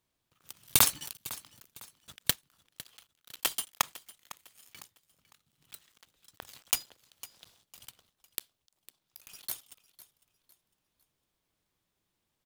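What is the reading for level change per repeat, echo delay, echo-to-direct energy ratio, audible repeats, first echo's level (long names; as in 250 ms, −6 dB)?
−9.5 dB, 504 ms, −17.5 dB, 2, −18.0 dB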